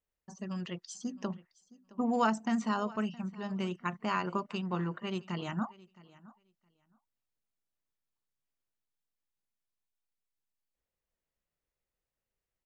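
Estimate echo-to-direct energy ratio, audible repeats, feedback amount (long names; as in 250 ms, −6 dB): −21.0 dB, 1, repeats not evenly spaced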